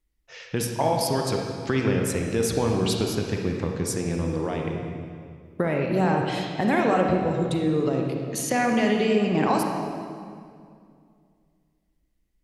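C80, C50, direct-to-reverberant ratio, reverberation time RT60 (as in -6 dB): 3.5 dB, 1.5 dB, 1.0 dB, 2.2 s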